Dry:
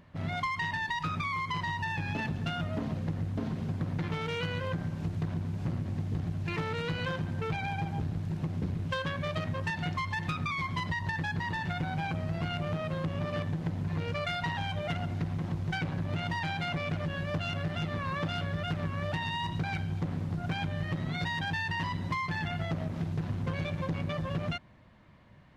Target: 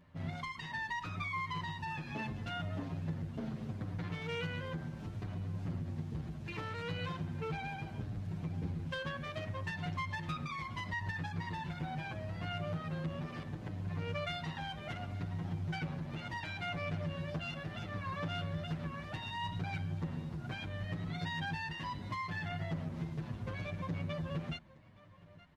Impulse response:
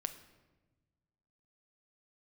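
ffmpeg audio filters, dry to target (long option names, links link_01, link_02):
-filter_complex "[0:a]asplit=2[link_01][link_02];[link_02]aecho=0:1:870:0.0944[link_03];[link_01][link_03]amix=inputs=2:normalize=0,asplit=2[link_04][link_05];[link_05]adelay=8.1,afreqshift=-0.71[link_06];[link_04][link_06]amix=inputs=2:normalize=1,volume=-3.5dB"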